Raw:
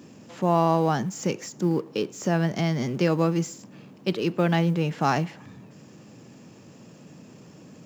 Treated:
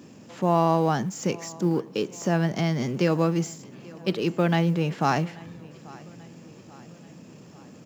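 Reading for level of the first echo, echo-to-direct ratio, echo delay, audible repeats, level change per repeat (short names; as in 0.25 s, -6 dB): -22.0 dB, -20.5 dB, 0.837 s, 3, -5.5 dB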